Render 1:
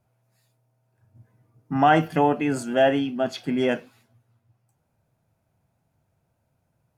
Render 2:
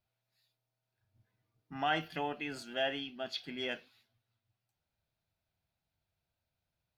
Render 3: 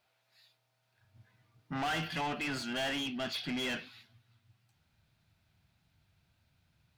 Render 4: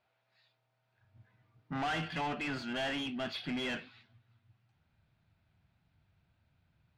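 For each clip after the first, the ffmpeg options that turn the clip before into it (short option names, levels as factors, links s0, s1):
-af "equalizer=f=125:t=o:w=1:g=-10,equalizer=f=250:t=o:w=1:g=-8,equalizer=f=500:t=o:w=1:g=-6,equalizer=f=1000:t=o:w=1:g=-6,equalizer=f=4000:t=o:w=1:g=11,equalizer=f=8000:t=o:w=1:g=-10,volume=0.355"
-filter_complex "[0:a]asubboost=boost=11:cutoff=170,asplit=2[s0][s1];[s1]highpass=f=720:p=1,volume=28.2,asoftclip=type=tanh:threshold=0.106[s2];[s0][s2]amix=inputs=2:normalize=0,lowpass=f=3500:p=1,volume=0.501,volume=0.447"
-af "adynamicsmooth=sensitivity=4.5:basefreq=3300"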